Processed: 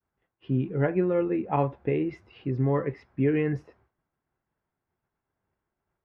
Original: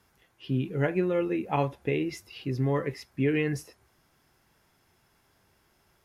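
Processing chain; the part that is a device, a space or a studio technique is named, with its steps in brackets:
hearing-loss simulation (low-pass filter 1,600 Hz 12 dB per octave; downward expander −57 dBFS)
level +2 dB

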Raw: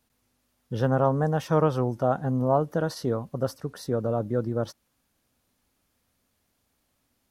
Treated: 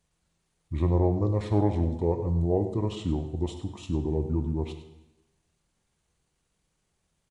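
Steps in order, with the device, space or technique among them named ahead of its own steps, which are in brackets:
monster voice (pitch shifter −7 semitones; low-shelf EQ 150 Hz +5 dB; single-tap delay 100 ms −13.5 dB; convolution reverb RT60 1.0 s, pre-delay 15 ms, DRR 7.5 dB)
level −4 dB

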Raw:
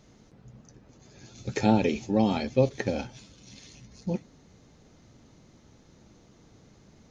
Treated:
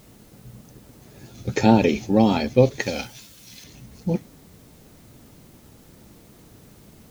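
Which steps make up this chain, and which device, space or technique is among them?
plain cassette with noise reduction switched in (one half of a high-frequency compander decoder only; tape wow and flutter; white noise bed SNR 32 dB)
0:02.80–0:03.64: tilt shelving filter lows −7 dB, about 1,400 Hz
level +6.5 dB

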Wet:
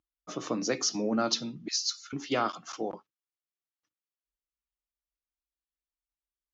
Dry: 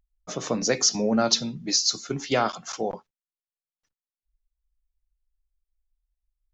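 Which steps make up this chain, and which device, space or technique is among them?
car door speaker (loudspeaker in its box 100–6,900 Hz, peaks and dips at 310 Hz +10 dB, 1,200 Hz +7 dB, 2,900 Hz +4 dB)
0:01.68–0:02.13: Butterworth high-pass 1,300 Hz 96 dB per octave
level −7.5 dB

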